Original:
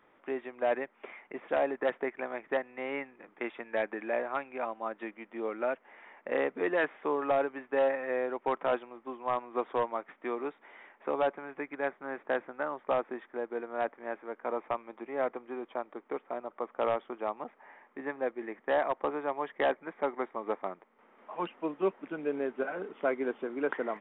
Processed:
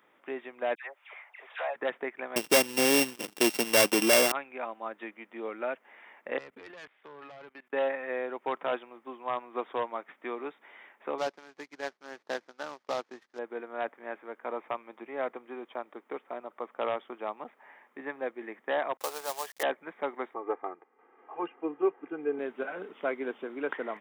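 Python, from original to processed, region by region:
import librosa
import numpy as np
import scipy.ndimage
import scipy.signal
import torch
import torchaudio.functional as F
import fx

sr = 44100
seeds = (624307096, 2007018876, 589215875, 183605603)

y = fx.chain(x, sr, fx.highpass(hz=640.0, slope=24),
    fx.dispersion(late='lows', ms=90.0, hz=1600.0), at=(0.75, 1.76))
y = fx.chain(y, sr, fx.sample_sort(block=16),
    fx.low_shelf(hz=380.0, db=11.5),
    fx.leveller(passes=3), at=(2.36, 4.32))
y = fx.chain(y, sr, fx.high_shelf(hz=2400.0, db=9.5),
    fx.tube_stage(drive_db=23.0, bias=0.7),
    fx.level_steps(step_db=23), at=(6.38, 7.73))
y = fx.chain(y, sr, fx.cvsd(bps=32000),
    fx.high_shelf(hz=2700.0, db=-6.5),
    fx.power_curve(exponent=1.4), at=(11.18, 13.39))
y = fx.chain(y, sr, fx.highpass(hz=460.0, slope=24),
    fx.high_shelf(hz=2500.0, db=-9.0),
    fx.quant_companded(bits=4), at=(18.97, 19.63))
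y = fx.chain(y, sr, fx.gaussian_blur(sigma=4.2),
    fx.comb(ms=2.5, depth=0.88), at=(20.34, 22.39))
y = scipy.signal.sosfilt(scipy.signal.butter(2, 130.0, 'highpass', fs=sr, output='sos'), y)
y = fx.high_shelf(y, sr, hz=2900.0, db=11.5)
y = F.gain(torch.from_numpy(y), -2.5).numpy()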